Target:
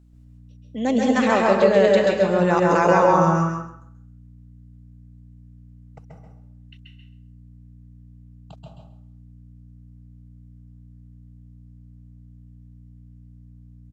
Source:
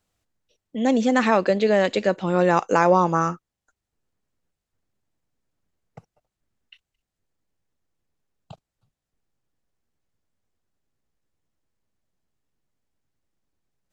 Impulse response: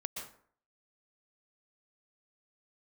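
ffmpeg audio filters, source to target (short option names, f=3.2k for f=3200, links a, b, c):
-filter_complex "[0:a]aeval=exprs='val(0)+0.00355*(sin(2*PI*60*n/s)+sin(2*PI*2*60*n/s)/2+sin(2*PI*3*60*n/s)/3+sin(2*PI*4*60*n/s)/4+sin(2*PI*5*60*n/s)/5)':c=same,aecho=1:1:133|266|399:0.631|0.101|0.0162[a];[1:a]atrim=start_sample=2205,asetrate=40131,aresample=44100[b];[a][b]afir=irnorm=-1:irlink=0"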